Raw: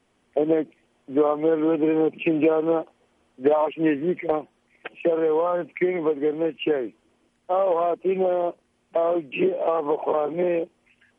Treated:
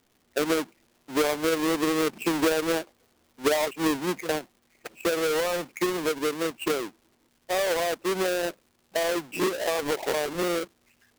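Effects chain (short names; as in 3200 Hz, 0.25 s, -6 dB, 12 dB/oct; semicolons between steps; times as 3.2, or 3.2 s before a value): half-waves squared off; crackle 280/s -44 dBFS; gain -7.5 dB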